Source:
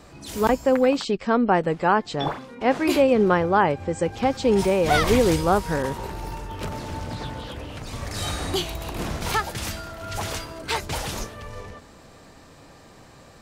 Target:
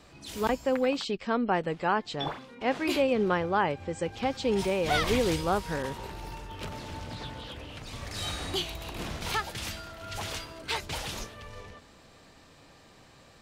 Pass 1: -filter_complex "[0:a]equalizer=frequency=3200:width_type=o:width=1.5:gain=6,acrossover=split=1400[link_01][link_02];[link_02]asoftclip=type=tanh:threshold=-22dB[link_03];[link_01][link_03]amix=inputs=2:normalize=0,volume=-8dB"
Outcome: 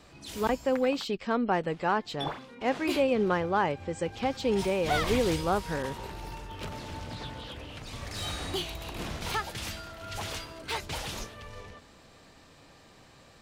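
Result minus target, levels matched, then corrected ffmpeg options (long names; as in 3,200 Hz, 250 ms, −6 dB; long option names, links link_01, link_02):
soft clipping: distortion +14 dB
-filter_complex "[0:a]equalizer=frequency=3200:width_type=o:width=1.5:gain=6,acrossover=split=1400[link_01][link_02];[link_02]asoftclip=type=tanh:threshold=-11.5dB[link_03];[link_01][link_03]amix=inputs=2:normalize=0,volume=-8dB"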